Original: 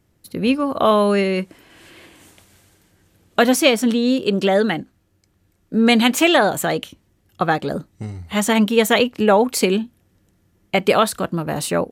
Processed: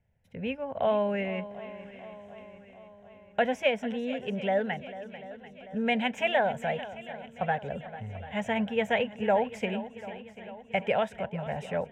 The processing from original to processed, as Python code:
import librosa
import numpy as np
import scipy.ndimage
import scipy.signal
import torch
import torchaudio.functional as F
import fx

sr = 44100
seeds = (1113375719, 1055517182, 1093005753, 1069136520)

y = fx.air_absorb(x, sr, metres=180.0)
y = fx.fixed_phaser(y, sr, hz=1200.0, stages=6)
y = fx.echo_swing(y, sr, ms=740, ratio=1.5, feedback_pct=52, wet_db=-15)
y = y * librosa.db_to_amplitude(-7.5)